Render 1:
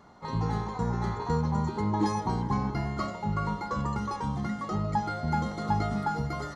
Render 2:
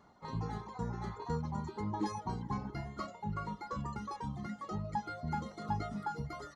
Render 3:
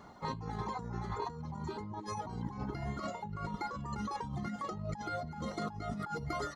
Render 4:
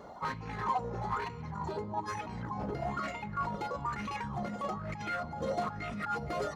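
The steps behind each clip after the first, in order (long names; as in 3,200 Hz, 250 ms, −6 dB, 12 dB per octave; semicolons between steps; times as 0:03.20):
reverb reduction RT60 0.91 s; level −7.5 dB
compressor whose output falls as the input rises −44 dBFS, ratio −1; level +4.5 dB
hard clipping −35.5 dBFS, distortion −12 dB; on a send at −14 dB: convolution reverb RT60 3.5 s, pre-delay 3 ms; on the sum: auto-filter bell 1.1 Hz 500–2,500 Hz +14 dB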